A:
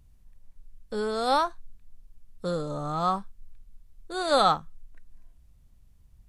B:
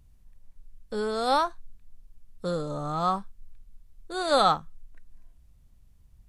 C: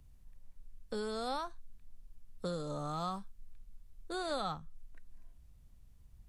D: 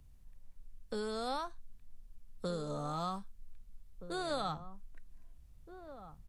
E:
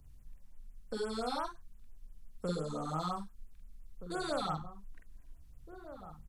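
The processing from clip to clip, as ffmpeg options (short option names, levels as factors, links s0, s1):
-af anull
-filter_complex "[0:a]acrossover=split=190|2800[s0][s1][s2];[s0]acompressor=threshold=0.00891:ratio=4[s3];[s1]acompressor=threshold=0.0158:ratio=4[s4];[s2]acompressor=threshold=0.00501:ratio=4[s5];[s3][s4][s5]amix=inputs=3:normalize=0,volume=0.794"
-filter_complex "[0:a]asplit=2[s0][s1];[s1]adelay=1574,volume=0.251,highshelf=f=4000:g=-35.4[s2];[s0][s2]amix=inputs=2:normalize=0"
-filter_complex "[0:a]asplit=2[s0][s1];[s1]asoftclip=type=hard:threshold=0.0251,volume=0.398[s2];[s0][s2]amix=inputs=2:normalize=0,asplit=2[s3][s4];[s4]adelay=45,volume=0.708[s5];[s3][s5]amix=inputs=2:normalize=0,afftfilt=real='re*(1-between(b*sr/1024,490*pow(4900/490,0.5+0.5*sin(2*PI*5.8*pts/sr))/1.41,490*pow(4900/490,0.5+0.5*sin(2*PI*5.8*pts/sr))*1.41))':imag='im*(1-between(b*sr/1024,490*pow(4900/490,0.5+0.5*sin(2*PI*5.8*pts/sr))/1.41,490*pow(4900/490,0.5+0.5*sin(2*PI*5.8*pts/sr))*1.41))':win_size=1024:overlap=0.75,volume=0.794"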